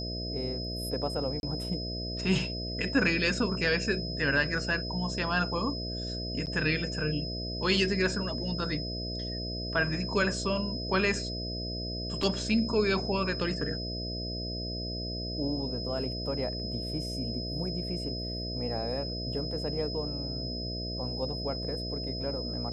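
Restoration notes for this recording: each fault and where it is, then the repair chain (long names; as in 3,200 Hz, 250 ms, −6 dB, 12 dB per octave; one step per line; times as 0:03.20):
mains buzz 60 Hz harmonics 11 −37 dBFS
whistle 5,100 Hz −37 dBFS
0:01.40–0:01.43: drop-out 31 ms
0:06.46–0:06.47: drop-out 8.8 ms
0:12.23: drop-out 2.4 ms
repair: notch filter 5,100 Hz, Q 30
hum removal 60 Hz, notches 11
repair the gap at 0:01.40, 31 ms
repair the gap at 0:06.46, 8.8 ms
repair the gap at 0:12.23, 2.4 ms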